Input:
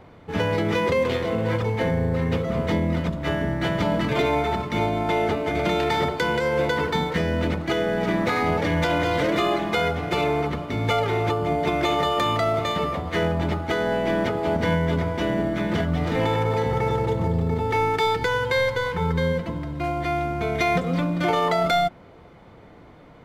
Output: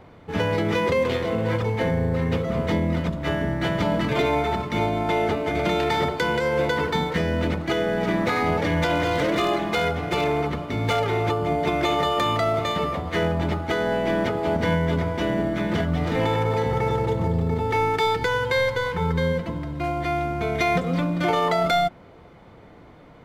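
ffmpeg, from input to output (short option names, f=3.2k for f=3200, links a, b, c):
-filter_complex "[0:a]asettb=1/sr,asplit=3[a][b][c];[a]atrim=end=8.944[d];[b]atrim=start=8.94:end=11.04,asetpts=PTS-STARTPTS,afade=t=in:d=0.004:c=qsin,afade=t=out:st=2.096:d=0.004:c=qsin,aeval=exprs='0.178*(abs(mod(val(0)/0.178+3,4)-2)-1)':c=same[e];[c]atrim=start=11.036[f];[d][e]acrossfade=d=0.004:c1=hsin:c2=qsin[g];[g][f]acrossfade=d=0.004:c1=qsin:c2=hsin"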